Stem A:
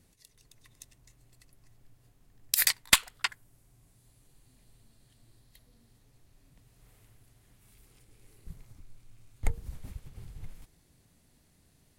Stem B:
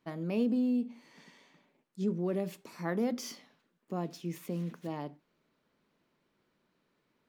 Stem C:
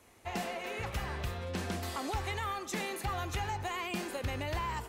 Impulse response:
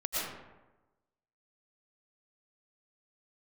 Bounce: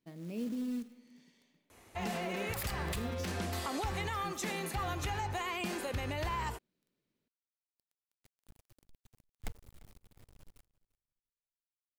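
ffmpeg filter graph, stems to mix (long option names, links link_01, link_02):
-filter_complex "[0:a]acrusher=bits=5:dc=4:mix=0:aa=0.000001,volume=-12.5dB,asplit=2[link_01][link_02];[link_02]volume=-21.5dB[link_03];[1:a]equalizer=frequency=1100:width=0.74:gain=-12,acrusher=bits=5:mode=log:mix=0:aa=0.000001,volume=-7dB,asplit=2[link_04][link_05];[link_05]volume=-21dB[link_06];[2:a]adelay=1700,volume=1.5dB[link_07];[3:a]atrim=start_sample=2205[link_08];[link_06][link_08]afir=irnorm=-1:irlink=0[link_09];[link_03]aecho=0:1:345|690|1035:1|0.16|0.0256[link_10];[link_01][link_04][link_07][link_09][link_10]amix=inputs=5:normalize=0,alimiter=level_in=3.5dB:limit=-24dB:level=0:latency=1:release=50,volume=-3.5dB"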